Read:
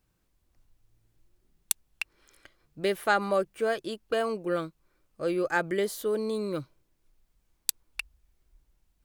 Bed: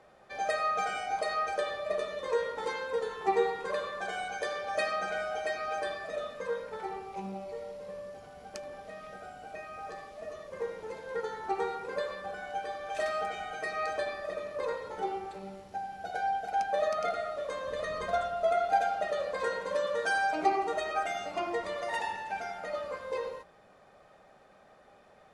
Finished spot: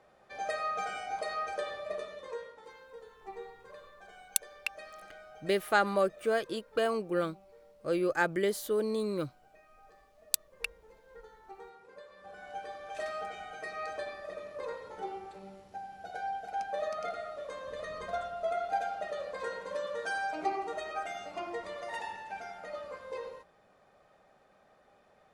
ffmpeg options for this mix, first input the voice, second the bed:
ffmpeg -i stem1.wav -i stem2.wav -filter_complex "[0:a]adelay=2650,volume=-1.5dB[link_01];[1:a]volume=8dB,afade=type=out:start_time=1.78:duration=0.83:silence=0.211349,afade=type=in:start_time=12.11:duration=0.43:silence=0.251189[link_02];[link_01][link_02]amix=inputs=2:normalize=0" out.wav

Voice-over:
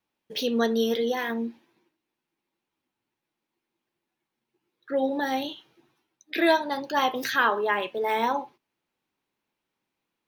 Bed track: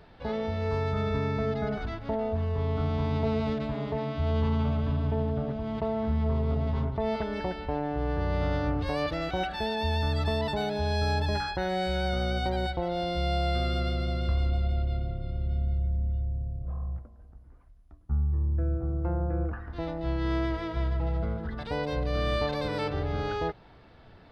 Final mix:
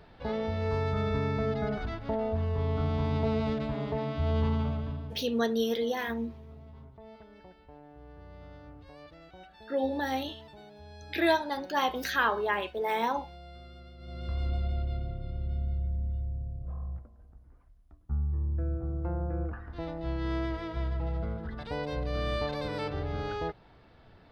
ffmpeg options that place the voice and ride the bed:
ffmpeg -i stem1.wav -i stem2.wav -filter_complex "[0:a]adelay=4800,volume=-4dB[link_01];[1:a]volume=16.5dB,afade=type=out:start_time=4.46:duration=0.77:silence=0.1,afade=type=in:start_time=13.98:duration=0.53:silence=0.133352[link_02];[link_01][link_02]amix=inputs=2:normalize=0" out.wav

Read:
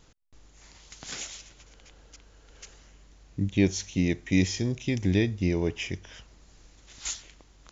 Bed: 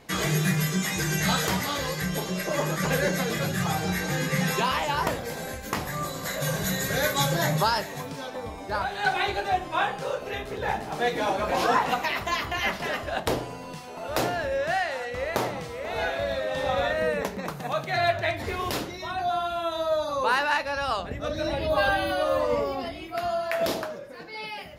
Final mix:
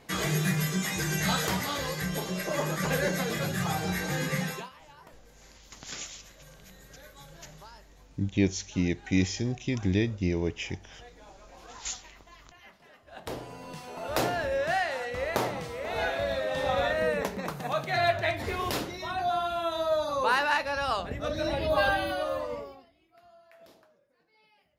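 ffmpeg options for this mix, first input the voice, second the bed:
ffmpeg -i stem1.wav -i stem2.wav -filter_complex "[0:a]adelay=4800,volume=-2dB[link_01];[1:a]volume=22dB,afade=type=out:start_time=4.31:duration=0.39:silence=0.0668344,afade=type=in:start_time=13.05:duration=0.85:silence=0.0562341,afade=type=out:start_time=21.82:duration=1.04:silence=0.0421697[link_02];[link_01][link_02]amix=inputs=2:normalize=0" out.wav

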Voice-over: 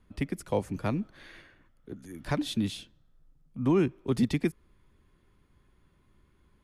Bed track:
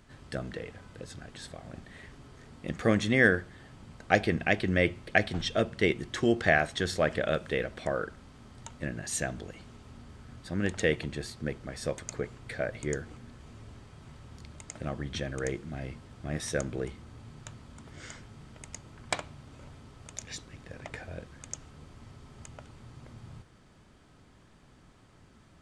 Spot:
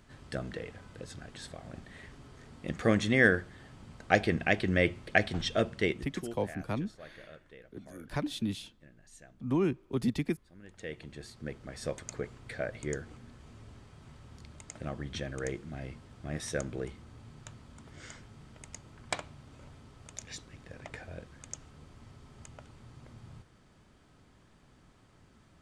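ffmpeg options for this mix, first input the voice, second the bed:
ffmpeg -i stem1.wav -i stem2.wav -filter_complex "[0:a]adelay=5850,volume=-4dB[link_01];[1:a]volume=19dB,afade=type=out:start_time=5.66:duration=0.71:silence=0.0794328,afade=type=in:start_time=10.66:duration=1.2:silence=0.1[link_02];[link_01][link_02]amix=inputs=2:normalize=0" out.wav

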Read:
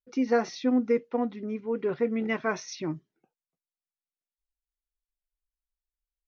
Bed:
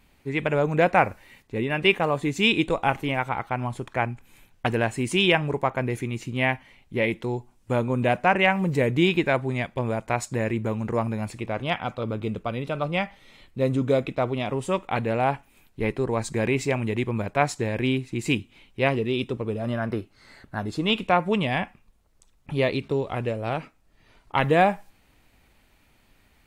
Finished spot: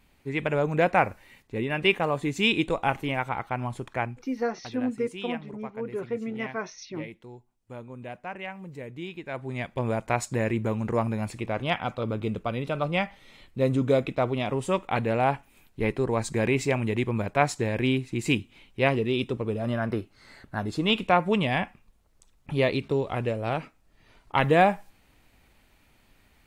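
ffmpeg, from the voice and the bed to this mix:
ffmpeg -i stem1.wav -i stem2.wav -filter_complex "[0:a]adelay=4100,volume=-4dB[link_01];[1:a]volume=14dB,afade=type=out:start_time=3.88:duration=0.73:silence=0.188365,afade=type=in:start_time=9.24:duration=0.66:silence=0.149624[link_02];[link_01][link_02]amix=inputs=2:normalize=0" out.wav

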